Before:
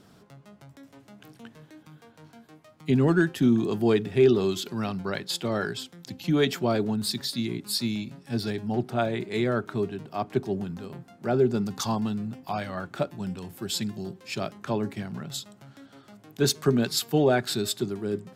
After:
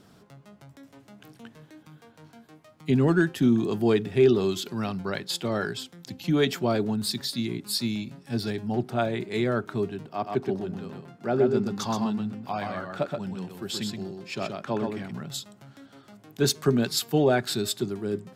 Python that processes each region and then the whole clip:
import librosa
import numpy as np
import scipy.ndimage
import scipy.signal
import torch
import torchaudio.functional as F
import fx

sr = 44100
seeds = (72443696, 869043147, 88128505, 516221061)

y = fx.chain(x, sr, fx.highpass(hz=140.0, slope=6),
    fx.high_shelf(hz=6700.0, db=-9.0),
    fx.echo_single(ms=125, db=-4.5), at=(10.07, 15.11))